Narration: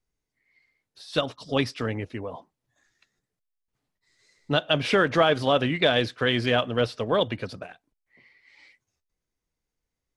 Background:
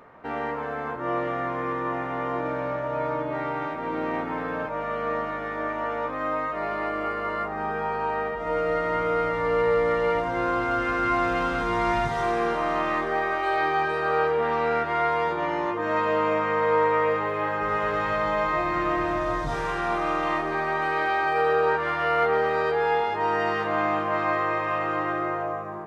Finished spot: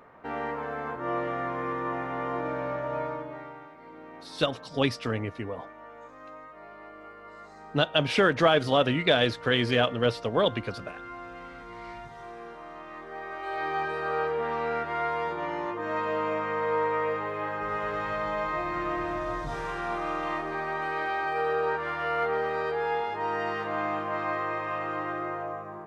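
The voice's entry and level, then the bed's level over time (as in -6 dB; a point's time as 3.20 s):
3.25 s, -1.0 dB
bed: 2.96 s -3 dB
3.69 s -18 dB
12.87 s -18 dB
13.76 s -5.5 dB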